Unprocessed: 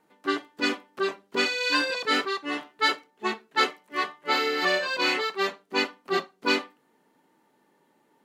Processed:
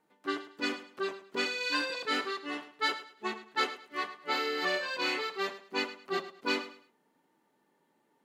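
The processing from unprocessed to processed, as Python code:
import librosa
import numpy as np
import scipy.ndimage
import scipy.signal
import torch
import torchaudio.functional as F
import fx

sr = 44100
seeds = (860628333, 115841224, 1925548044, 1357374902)

y = fx.echo_feedback(x, sr, ms=106, feedback_pct=27, wet_db=-14.0)
y = y * 10.0 ** (-7.0 / 20.0)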